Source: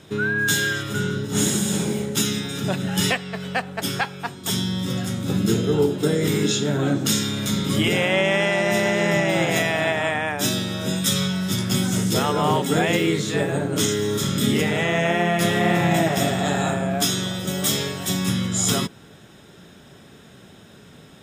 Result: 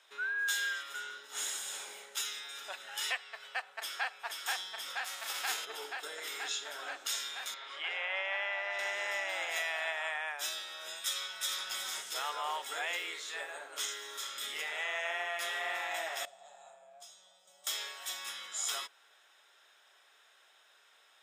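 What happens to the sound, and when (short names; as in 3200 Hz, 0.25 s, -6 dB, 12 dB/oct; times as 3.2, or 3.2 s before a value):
3.33–4.14 echo throw 0.48 s, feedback 85%, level -2 dB
5.04–5.64 spectral whitening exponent 0.6
7.54–8.79 BPF 400–2900 Hz
11.03–11.64 echo throw 0.37 s, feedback 35%, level -1 dB
16.25–17.67 EQ curve 170 Hz 0 dB, 280 Hz -26 dB, 640 Hz -10 dB, 1600 Hz -27 dB, 8000 Hz -15 dB, 12000 Hz -24 dB
whole clip: Bessel high-pass 1100 Hz, order 4; high shelf 4100 Hz -6 dB; gain -8.5 dB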